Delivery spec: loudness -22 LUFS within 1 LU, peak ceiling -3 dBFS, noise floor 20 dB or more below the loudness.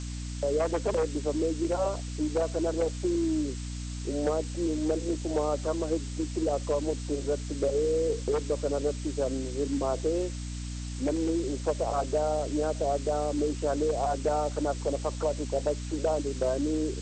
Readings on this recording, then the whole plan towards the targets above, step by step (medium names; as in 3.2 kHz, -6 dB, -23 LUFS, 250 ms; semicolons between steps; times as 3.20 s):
hum 60 Hz; highest harmonic 300 Hz; hum level -34 dBFS; noise floor -36 dBFS; noise floor target -50 dBFS; loudness -30.0 LUFS; peak level -17.0 dBFS; loudness target -22.0 LUFS
-> hum notches 60/120/180/240/300 Hz; noise reduction 14 dB, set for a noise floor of -36 dBFS; trim +8 dB